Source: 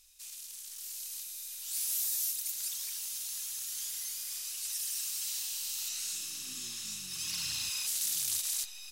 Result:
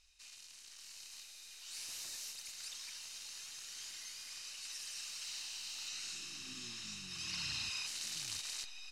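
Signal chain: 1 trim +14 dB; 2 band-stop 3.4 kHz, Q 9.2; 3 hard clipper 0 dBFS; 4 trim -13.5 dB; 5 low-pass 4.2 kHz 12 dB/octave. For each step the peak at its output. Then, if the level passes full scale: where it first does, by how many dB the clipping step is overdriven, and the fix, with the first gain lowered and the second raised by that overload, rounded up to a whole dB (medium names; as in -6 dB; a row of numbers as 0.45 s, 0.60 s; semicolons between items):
-6.0 dBFS, -6.0 dBFS, -6.0 dBFS, -19.5 dBFS, -28.0 dBFS; nothing clips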